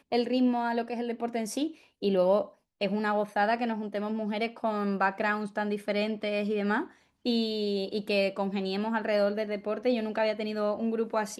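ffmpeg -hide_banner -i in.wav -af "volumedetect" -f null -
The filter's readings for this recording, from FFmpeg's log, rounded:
mean_volume: -29.2 dB
max_volume: -13.6 dB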